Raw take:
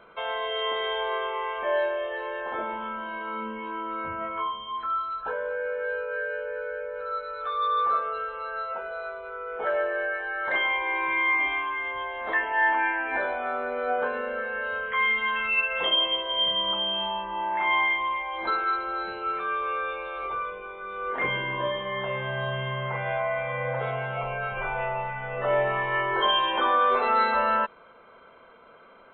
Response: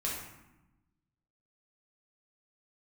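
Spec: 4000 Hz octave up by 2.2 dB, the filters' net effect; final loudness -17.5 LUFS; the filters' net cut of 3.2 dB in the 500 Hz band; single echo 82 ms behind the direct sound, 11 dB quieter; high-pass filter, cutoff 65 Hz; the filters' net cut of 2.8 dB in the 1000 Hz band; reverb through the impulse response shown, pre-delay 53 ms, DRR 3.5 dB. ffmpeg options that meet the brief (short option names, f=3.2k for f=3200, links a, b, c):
-filter_complex "[0:a]highpass=65,equalizer=f=500:t=o:g=-3,equalizer=f=1k:t=o:g=-3,equalizer=f=4k:t=o:g=3.5,aecho=1:1:82:0.282,asplit=2[a][b];[1:a]atrim=start_sample=2205,adelay=53[c];[b][c]afir=irnorm=-1:irlink=0,volume=-7.5dB[d];[a][d]amix=inputs=2:normalize=0,volume=7.5dB"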